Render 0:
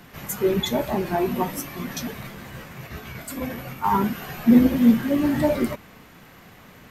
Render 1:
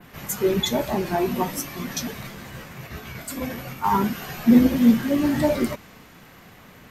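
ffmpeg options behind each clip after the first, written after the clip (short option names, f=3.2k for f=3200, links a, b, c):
-af "adynamicequalizer=threshold=0.00398:dfrequency=5800:dqfactor=0.87:tfrequency=5800:tqfactor=0.87:attack=5:release=100:ratio=0.375:range=2.5:mode=boostabove:tftype=bell"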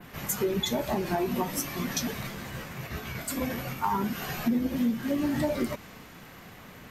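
-af "acompressor=threshold=-25dB:ratio=5"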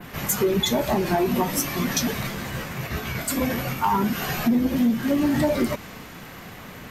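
-af "asoftclip=type=tanh:threshold=-19.5dB,volume=7.5dB"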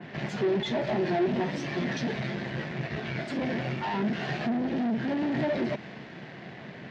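-af "aeval=exprs='(tanh(25.1*val(0)+0.75)-tanh(0.75))/25.1':c=same,highpass=120,equalizer=f=140:t=q:w=4:g=9,equalizer=f=210:t=q:w=4:g=5,equalizer=f=360:t=q:w=4:g=8,equalizer=f=650:t=q:w=4:g=7,equalizer=f=1.2k:t=q:w=4:g=-7,equalizer=f=1.8k:t=q:w=4:g=6,lowpass=f=4.5k:w=0.5412,lowpass=f=4.5k:w=1.3066,volume=-1.5dB"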